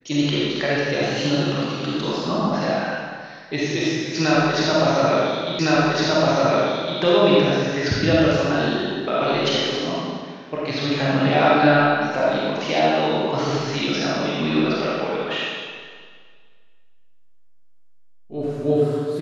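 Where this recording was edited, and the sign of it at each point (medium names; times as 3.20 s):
5.59 s: repeat of the last 1.41 s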